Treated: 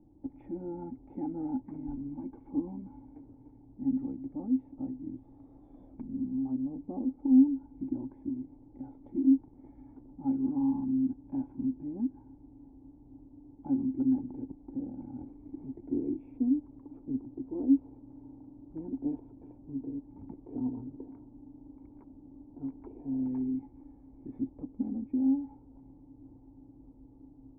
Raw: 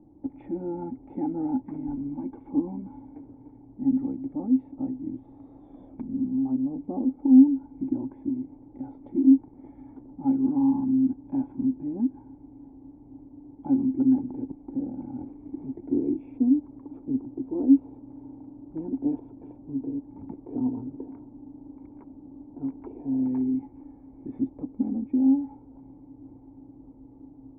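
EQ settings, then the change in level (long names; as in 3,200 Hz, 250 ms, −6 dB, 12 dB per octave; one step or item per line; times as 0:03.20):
high-frequency loss of the air 160 metres
low-shelf EQ 82 Hz +9 dB
−7.0 dB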